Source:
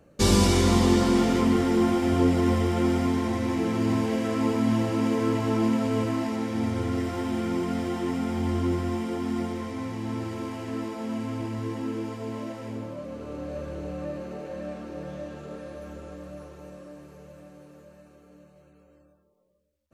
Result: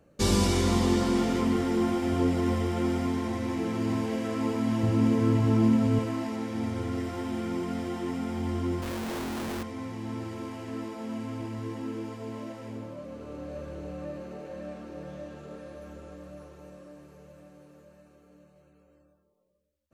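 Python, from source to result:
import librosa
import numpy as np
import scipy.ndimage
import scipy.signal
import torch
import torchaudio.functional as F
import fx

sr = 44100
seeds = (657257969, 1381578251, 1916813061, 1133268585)

y = fx.bass_treble(x, sr, bass_db=11, treble_db=0, at=(4.83, 5.99))
y = fx.schmitt(y, sr, flips_db=-43.0, at=(8.82, 9.63))
y = y * 10.0 ** (-4.0 / 20.0)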